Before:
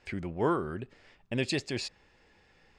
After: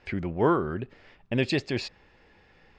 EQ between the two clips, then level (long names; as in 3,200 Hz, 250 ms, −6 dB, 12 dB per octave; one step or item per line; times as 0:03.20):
high-frequency loss of the air 130 metres
+5.5 dB